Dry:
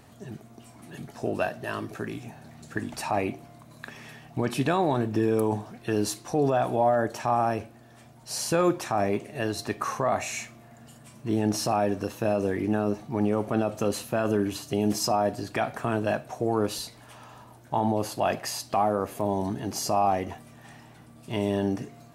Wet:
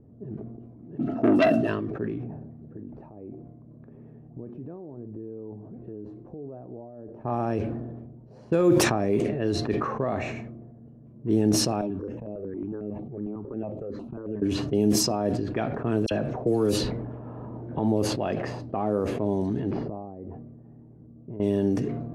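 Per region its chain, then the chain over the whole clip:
0.99–1.67 s: small resonant body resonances 280/660/1300/2700 Hz, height 18 dB + transformer saturation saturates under 1.5 kHz
2.18–7.24 s: treble shelf 3.9 kHz -9 dB + compression, threshold -39 dBFS + tape noise reduction on one side only encoder only
11.81–14.42 s: bass shelf 160 Hz -5.5 dB + compression 12:1, threshold -28 dBFS + stepped phaser 11 Hz 480–5600 Hz
16.06–17.79 s: phase dispersion lows, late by 50 ms, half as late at 2.9 kHz + three bands compressed up and down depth 70%
19.71–21.40 s: distance through air 380 m + compression 16:1, threshold -35 dBFS
whole clip: resonant low shelf 580 Hz +7.5 dB, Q 1.5; level-controlled noise filter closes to 440 Hz, open at -14 dBFS; decay stretcher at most 34 dB/s; trim -6 dB

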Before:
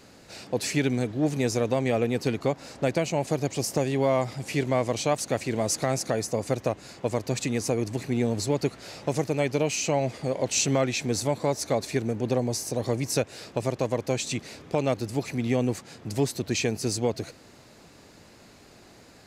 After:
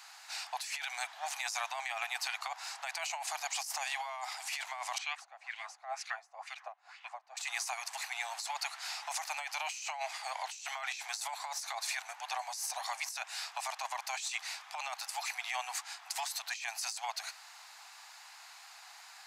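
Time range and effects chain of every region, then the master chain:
4.98–7.37 s: LFO band-pass sine 2.1 Hz 230–2900 Hz + band-stop 930 Hz, Q 14
whole clip: steep high-pass 750 Hz 72 dB/octave; compressor with a negative ratio -38 dBFS, ratio -1

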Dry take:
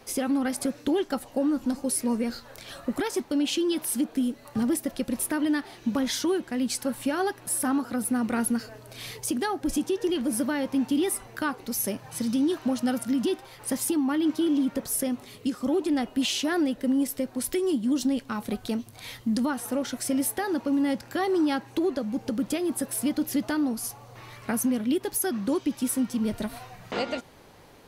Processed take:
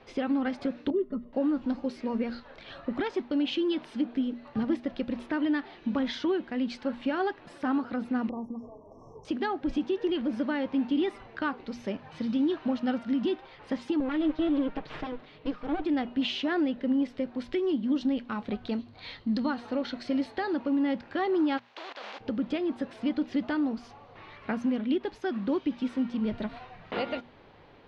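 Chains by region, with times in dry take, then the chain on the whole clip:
0.90–1.33 s: boxcar filter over 55 samples + comb 4.8 ms, depth 94%
8.29–9.25 s: compression 2:1, threshold -34 dBFS + brick-wall FIR band-stop 1.2–5.3 kHz + treble shelf 5.4 kHz -10.5 dB
14.00–15.85 s: comb filter that takes the minimum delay 6.5 ms + low-pass 5.3 kHz
18.71–20.55 s: peaking EQ 4.3 kHz +11 dB 0.23 oct + tape noise reduction on one side only decoder only
21.57–22.19 s: spectral contrast reduction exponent 0.39 + Chebyshev band-pass 610–6800 Hz + level held to a coarse grid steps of 19 dB
whole clip: low-pass 3.7 kHz 24 dB/octave; hum notches 60/120/180/240 Hz; trim -2 dB

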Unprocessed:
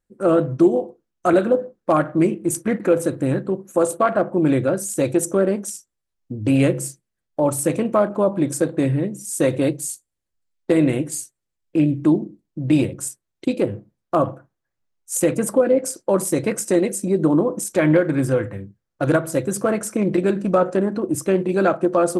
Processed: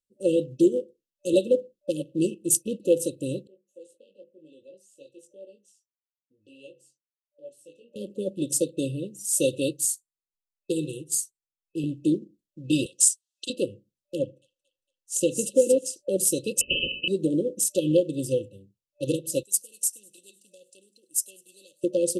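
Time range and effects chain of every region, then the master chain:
3.47–7.96 s: chorus 1 Hz, delay 19 ms, depth 2.1 ms + band-pass filter 1.2 kHz, Q 1.8
9.86–11.84 s: static phaser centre 390 Hz, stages 8 + tape noise reduction on one side only decoder only
12.86–13.50 s: frequency weighting ITU-R 468 + compression 2:1, threshold -24 dBFS
14.19–15.96 s: distance through air 53 m + feedback echo behind a high-pass 228 ms, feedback 43%, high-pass 3.3 kHz, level -3.5 dB
16.61–17.08 s: frequency inversion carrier 2.8 kHz + spectrum-flattening compressor 10:1
19.43–21.84 s: pre-emphasis filter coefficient 0.97 + feedback echo behind a high-pass 101 ms, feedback 65%, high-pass 5.3 kHz, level -16 dB
whole clip: FFT band-reject 590–2600 Hz; tilt shelf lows -7 dB, about 680 Hz; upward expansion 1.5:1, over -38 dBFS

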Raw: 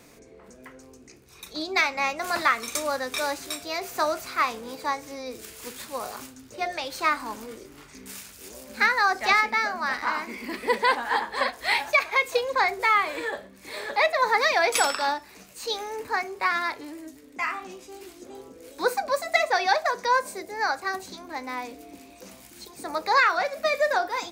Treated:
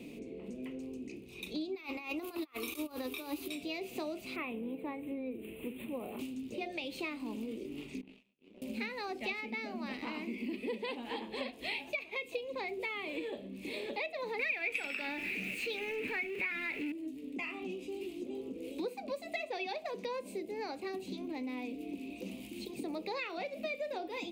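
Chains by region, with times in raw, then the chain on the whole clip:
1.75–3.48 s: FFT filter 110 Hz 0 dB, 160 Hz -27 dB, 330 Hz +4 dB, 550 Hz -7 dB, 1.2 kHz +8 dB, 1.9 kHz -4 dB, 4.7 kHz -1 dB, 8.1 kHz -3 dB, 12 kHz +11 dB + compressor with a negative ratio -33 dBFS
4.36–6.19 s: Butterworth band-stop 5.4 kHz, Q 0.71 + tape noise reduction on one side only decoder only
8.01–8.62 s: band-pass 100–2100 Hz + power-law waveshaper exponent 3 + detune thickener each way 32 cents
14.39–16.92 s: jump at every zero crossing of -30 dBFS + high-order bell 1.9 kHz +15 dB 1.1 oct
whole clip: FFT filter 110 Hz 0 dB, 220 Hz +13 dB, 350 Hz +10 dB, 1.6 kHz -17 dB, 2.6 kHz +10 dB, 5.7 kHz -10 dB, 8.8 kHz -6 dB; compression 4:1, threshold -36 dBFS; trim -2 dB

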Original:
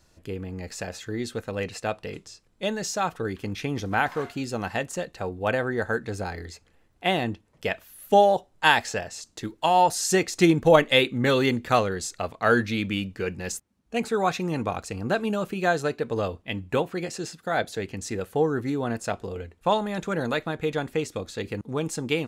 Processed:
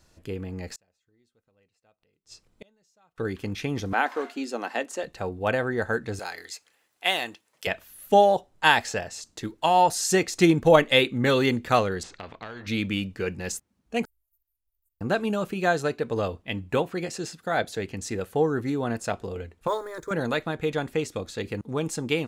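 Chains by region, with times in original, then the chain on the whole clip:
0.75–3.18 s: inverted gate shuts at -31 dBFS, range -37 dB + band-stop 1.7 kHz, Q 13
3.93–5.04 s: Chebyshev high-pass 250 Hz, order 4 + treble shelf 12 kHz -7.5 dB
6.19–7.67 s: high-pass 600 Hz 6 dB/octave + tilt EQ +2.5 dB/octave
12.03–12.67 s: tape spacing loss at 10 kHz 34 dB + compression 10:1, threshold -28 dBFS + spectrum-flattening compressor 2:1
14.05–15.01 s: inverse Chebyshev band-stop 150–4600 Hz, stop band 80 dB + robot voice 322 Hz
19.67–20.11 s: companding laws mixed up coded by A + static phaser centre 750 Hz, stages 6
whole clip: none

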